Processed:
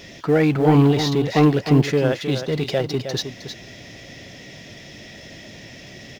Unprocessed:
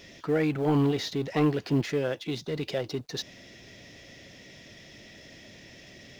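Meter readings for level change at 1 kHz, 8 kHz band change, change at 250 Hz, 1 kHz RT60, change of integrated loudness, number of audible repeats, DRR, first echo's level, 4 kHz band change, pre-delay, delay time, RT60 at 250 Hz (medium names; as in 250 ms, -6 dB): +10.5 dB, no reading, +9.5 dB, no reverb, +9.5 dB, 1, no reverb, -9.0 dB, +8.5 dB, no reverb, 313 ms, no reverb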